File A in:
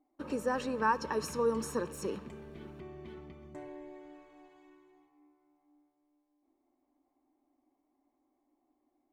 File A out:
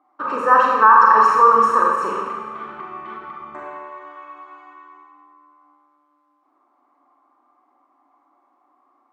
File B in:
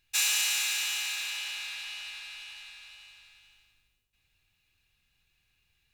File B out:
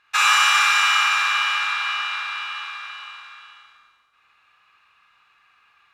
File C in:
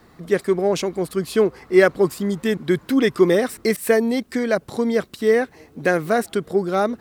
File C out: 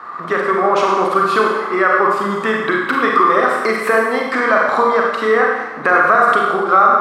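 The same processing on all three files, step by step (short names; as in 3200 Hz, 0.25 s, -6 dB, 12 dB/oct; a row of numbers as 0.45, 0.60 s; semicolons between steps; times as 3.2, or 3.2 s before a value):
compressor, threshold -23 dBFS; band-pass 1200 Hz, Q 6.8; Schroeder reverb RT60 1.1 s, combs from 32 ms, DRR -1.5 dB; maximiser +31.5 dB; ending taper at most 150 dB/s; gain -1 dB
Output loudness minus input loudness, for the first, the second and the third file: +20.0, +11.0, +6.0 LU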